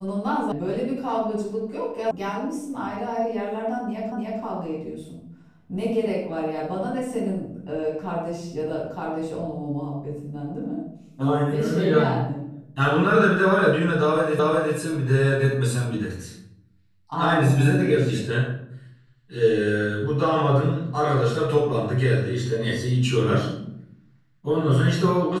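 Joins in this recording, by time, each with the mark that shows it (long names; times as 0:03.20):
0:00.52: cut off before it has died away
0:02.11: cut off before it has died away
0:04.12: the same again, the last 0.3 s
0:14.39: the same again, the last 0.37 s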